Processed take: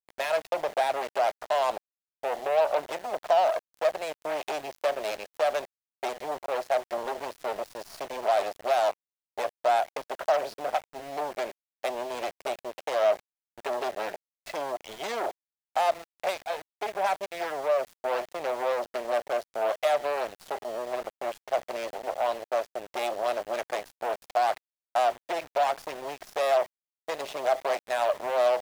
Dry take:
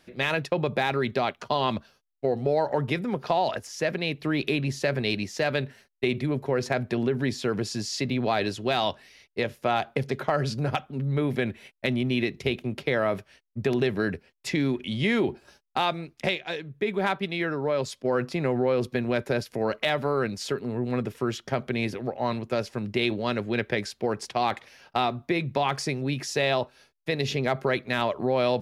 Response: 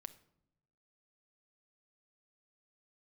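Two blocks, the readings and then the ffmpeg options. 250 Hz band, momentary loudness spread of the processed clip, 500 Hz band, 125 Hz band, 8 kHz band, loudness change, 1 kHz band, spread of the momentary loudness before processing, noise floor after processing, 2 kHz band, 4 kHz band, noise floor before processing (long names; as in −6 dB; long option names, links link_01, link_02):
−18.0 dB, 10 LU, 0.0 dB, below −25 dB, −3.5 dB, −2.0 dB, +2.0 dB, 5 LU, below −85 dBFS, −5.5 dB, −7.0 dB, −68 dBFS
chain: -af "lowpass=frequency=2400:poles=1,aeval=exprs='0.251*(cos(1*acos(clip(val(0)/0.251,-1,1)))-cos(1*PI/2))+0.00316*(cos(3*acos(clip(val(0)/0.251,-1,1)))-cos(3*PI/2))+0.00631*(cos(6*acos(clip(val(0)/0.251,-1,1)))-cos(6*PI/2))+0.0562*(cos(8*acos(clip(val(0)/0.251,-1,1)))-cos(8*PI/2))':channel_layout=same,asoftclip=type=tanh:threshold=-15dB,highpass=frequency=650:width_type=q:width=4.4,aeval=exprs='val(0)*gte(abs(val(0)),0.0168)':channel_layout=same,volume=-5dB"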